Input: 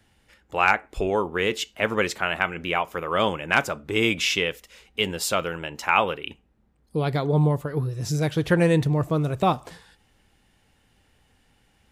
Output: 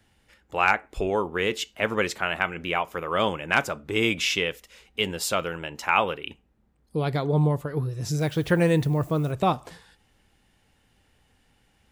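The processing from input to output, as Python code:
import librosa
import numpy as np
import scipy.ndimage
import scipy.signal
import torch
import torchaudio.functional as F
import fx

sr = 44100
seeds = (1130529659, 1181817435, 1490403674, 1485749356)

y = fx.dmg_noise_colour(x, sr, seeds[0], colour='violet', level_db=-54.0, at=(8.18, 9.31), fade=0.02)
y = F.gain(torch.from_numpy(y), -1.5).numpy()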